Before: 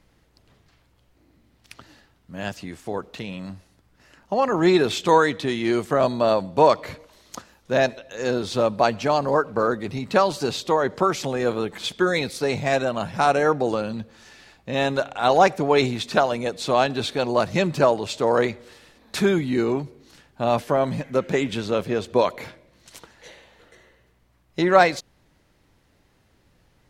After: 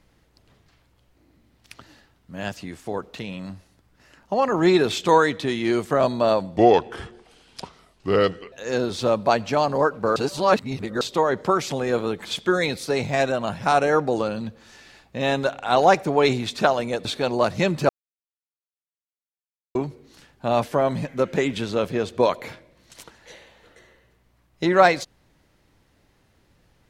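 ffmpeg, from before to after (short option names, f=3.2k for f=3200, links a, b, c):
-filter_complex "[0:a]asplit=8[a][b][c][d][e][f][g][h];[a]atrim=end=6.564[i];[b]atrim=start=6.56:end=8.05,asetpts=PTS-STARTPTS,asetrate=33516,aresample=44100,atrim=end_sample=86459,asetpts=PTS-STARTPTS[j];[c]atrim=start=8.046:end=9.692[k];[d]atrim=start=9.688:end=10.542,asetpts=PTS-STARTPTS,areverse[l];[e]atrim=start=10.538:end=16.582[m];[f]atrim=start=17.008:end=17.85,asetpts=PTS-STARTPTS,afade=t=out:st=0.838:d=0.004:c=hsin[n];[g]atrim=start=17.85:end=19.71,asetpts=PTS-STARTPTS,volume=0[o];[h]atrim=start=19.71,asetpts=PTS-STARTPTS,afade=t=in:d=0.004:c=hsin[p];[i][j]acrossfade=d=0.004:c1=hsin:c2=hsin[q];[q][k]acrossfade=d=0.004:c1=hsin:c2=hsin[r];[r][l]acrossfade=d=0.004:c1=hsin:c2=hsin[s];[s][m]acrossfade=d=0.004:c1=hsin:c2=hsin[t];[n][o][p]concat=n=3:v=0:a=1[u];[t][u]acrossfade=d=0.004:c1=hsin:c2=hsin"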